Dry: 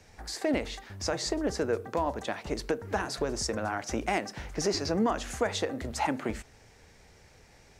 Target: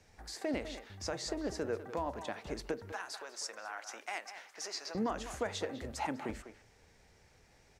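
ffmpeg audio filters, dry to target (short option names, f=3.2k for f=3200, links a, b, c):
-filter_complex "[0:a]asettb=1/sr,asplit=3[a][b][c];[a]atrim=end=2.924[d];[b]atrim=start=2.92:end=4.95,asetpts=PTS-STARTPTS,afade=t=in:d=0.004:c=qsin,afade=t=out:st=2.026:d=0.004:c=qsin,highpass=890[e];[c]atrim=start=4.946[f];[d][e]acrossfade=d=0.004:c1=hsin:c2=qsin[g];[g][f]acrossfade=d=0.004:c1=qsin:c2=hsin,asplit=2[h][i];[i]adelay=200,highpass=300,lowpass=3.4k,asoftclip=type=hard:threshold=-23dB,volume=-10dB[j];[h][j]amix=inputs=2:normalize=0,volume=-7.5dB"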